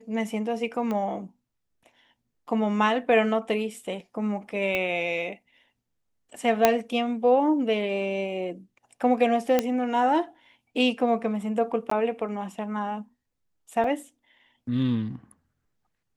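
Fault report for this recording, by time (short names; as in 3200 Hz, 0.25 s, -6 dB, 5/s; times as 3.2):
0.91 pop -19 dBFS
4.75 pop -14 dBFS
6.65 pop -3 dBFS
9.59 pop -8 dBFS
11.9–11.91 gap 14 ms
13.84 gap 2.2 ms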